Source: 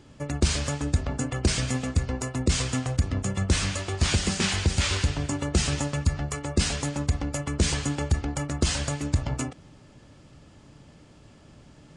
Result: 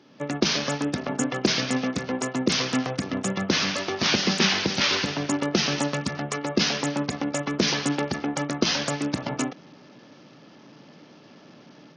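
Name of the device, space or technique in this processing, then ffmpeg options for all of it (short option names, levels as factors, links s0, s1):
Bluetooth headset: -af "highpass=f=180:w=0.5412,highpass=f=180:w=1.3066,dynaudnorm=f=120:g=3:m=2.11,aresample=16000,aresample=44100,volume=0.891" -ar 48000 -c:a sbc -b:a 64k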